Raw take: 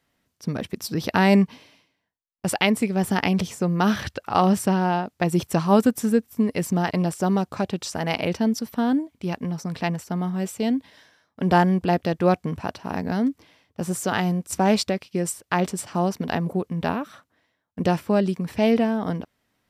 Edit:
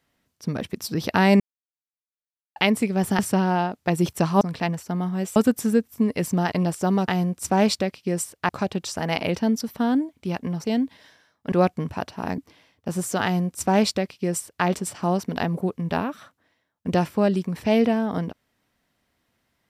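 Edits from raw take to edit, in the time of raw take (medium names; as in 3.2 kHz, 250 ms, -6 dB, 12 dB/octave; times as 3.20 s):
1.40–2.56 s: mute
3.19–4.53 s: delete
9.62–10.57 s: move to 5.75 s
11.45–12.19 s: delete
13.05–13.30 s: delete
14.16–15.57 s: copy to 7.47 s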